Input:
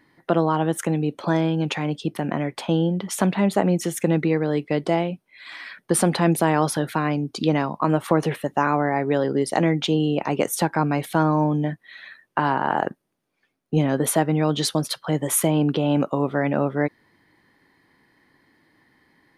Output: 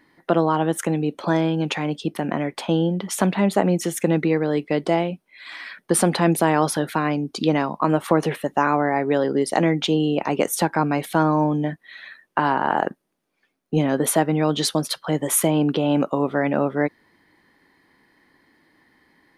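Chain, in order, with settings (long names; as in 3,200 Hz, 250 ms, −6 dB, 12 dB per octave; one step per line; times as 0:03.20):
parametric band 120 Hz −7.5 dB 0.59 octaves
level +1.5 dB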